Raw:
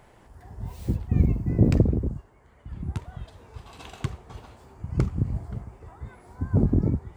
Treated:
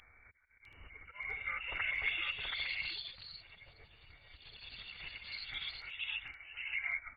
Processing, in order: added harmonics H 3 -27 dB, 5 -12 dB, 6 -20 dB, 8 -24 dB, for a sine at -4 dBFS; auto swell 0.662 s; inverted band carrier 3300 Hz; EQ curve 110 Hz 0 dB, 270 Hz -20 dB, 510 Hz -19 dB; formant-preserving pitch shift -7 st; echo 0.728 s -4.5 dB; echoes that change speed 0.652 s, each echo +4 st, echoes 3; gain +5.5 dB

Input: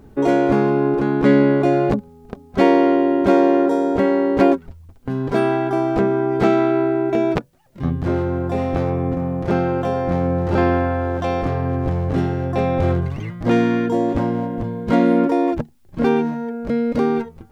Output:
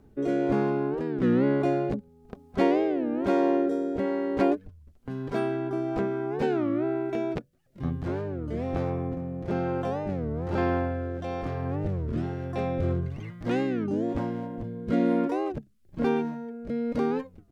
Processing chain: rotary speaker horn 1.1 Hz; record warp 33 1/3 rpm, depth 250 cents; gain -8 dB

